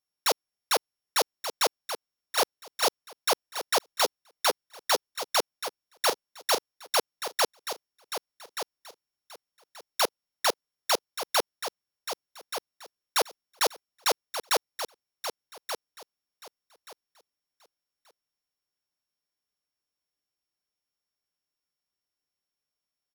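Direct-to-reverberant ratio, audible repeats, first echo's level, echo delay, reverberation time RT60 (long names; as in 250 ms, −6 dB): no reverb audible, 2, −9.5 dB, 1,180 ms, no reverb audible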